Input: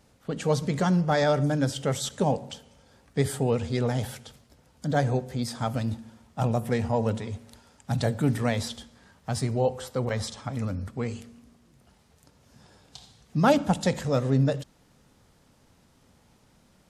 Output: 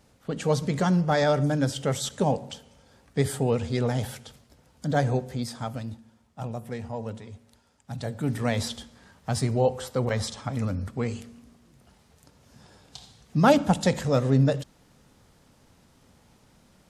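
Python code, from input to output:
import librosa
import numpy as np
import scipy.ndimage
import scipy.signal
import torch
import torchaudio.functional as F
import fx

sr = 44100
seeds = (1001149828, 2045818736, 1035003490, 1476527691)

y = fx.gain(x, sr, db=fx.line((5.27, 0.5), (6.03, -8.5), (7.95, -8.5), (8.62, 2.0)))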